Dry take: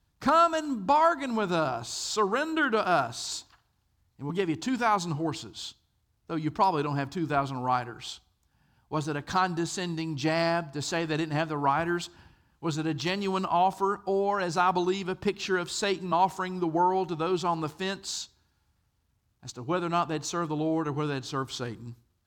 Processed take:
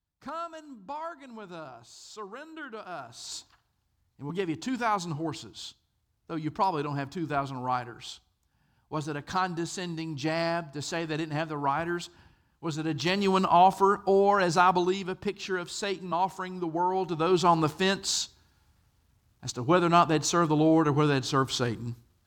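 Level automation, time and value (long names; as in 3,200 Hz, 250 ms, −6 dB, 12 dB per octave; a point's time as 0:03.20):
0:02.97 −15 dB
0:03.37 −2.5 dB
0:12.76 −2.5 dB
0:13.25 +4.5 dB
0:14.47 +4.5 dB
0:15.28 −3.5 dB
0:16.82 −3.5 dB
0:17.47 +6 dB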